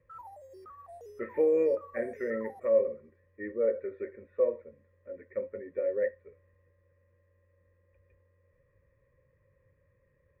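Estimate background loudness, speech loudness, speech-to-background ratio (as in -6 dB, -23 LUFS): -50.0 LUFS, -31.5 LUFS, 18.5 dB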